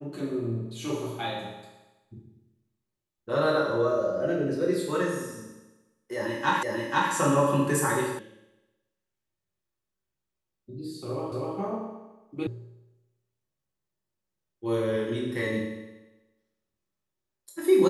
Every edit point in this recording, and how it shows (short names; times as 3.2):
6.63 repeat of the last 0.49 s
8.19 sound cut off
11.32 repeat of the last 0.25 s
12.47 sound cut off